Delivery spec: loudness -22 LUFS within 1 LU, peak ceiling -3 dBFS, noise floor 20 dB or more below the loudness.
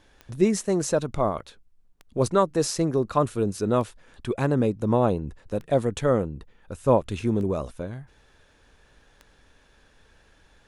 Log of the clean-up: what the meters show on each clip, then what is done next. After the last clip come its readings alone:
clicks 6; loudness -25.0 LUFS; peak -7.5 dBFS; loudness target -22.0 LUFS
-> de-click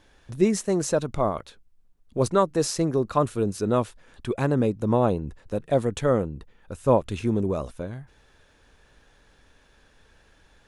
clicks 0; loudness -25.0 LUFS; peak -7.5 dBFS; loudness target -22.0 LUFS
-> gain +3 dB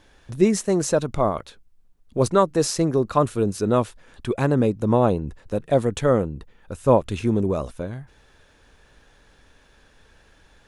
loudness -22.0 LUFS; peak -4.5 dBFS; noise floor -57 dBFS

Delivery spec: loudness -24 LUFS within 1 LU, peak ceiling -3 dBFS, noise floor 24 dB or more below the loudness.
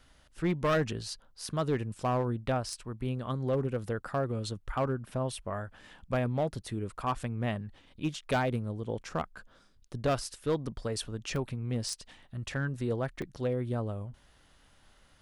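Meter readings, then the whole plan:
clipped 0.9%; flat tops at -22.5 dBFS; dropouts 2; longest dropout 1.9 ms; loudness -33.5 LUFS; peak -22.5 dBFS; loudness target -24.0 LUFS
-> clip repair -22.5 dBFS; interpolate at 11.36/13.22, 1.9 ms; gain +9.5 dB

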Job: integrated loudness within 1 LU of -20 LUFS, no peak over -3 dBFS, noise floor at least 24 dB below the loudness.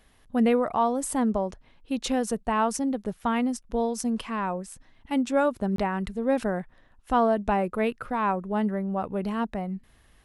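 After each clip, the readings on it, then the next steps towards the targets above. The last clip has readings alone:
dropouts 1; longest dropout 23 ms; loudness -27.0 LUFS; peak -11.5 dBFS; loudness target -20.0 LUFS
-> interpolate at 5.76, 23 ms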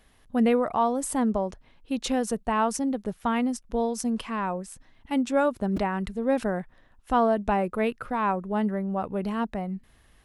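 dropouts 0; loudness -27.0 LUFS; peak -11.5 dBFS; loudness target -20.0 LUFS
-> gain +7 dB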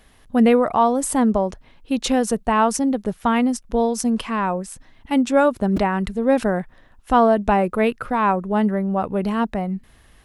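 loudness -20.0 LUFS; peak -4.5 dBFS; noise floor -53 dBFS

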